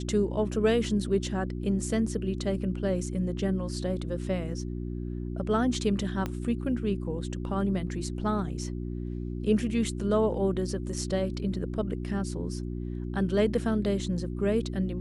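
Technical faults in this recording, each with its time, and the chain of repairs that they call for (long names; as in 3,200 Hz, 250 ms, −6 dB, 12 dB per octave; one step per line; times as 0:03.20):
mains hum 60 Hz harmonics 6 −34 dBFS
0:06.26: click −18 dBFS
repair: click removal
hum removal 60 Hz, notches 6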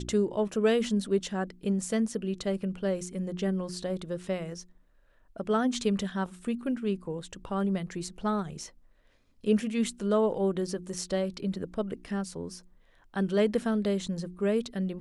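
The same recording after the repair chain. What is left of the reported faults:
0:06.26: click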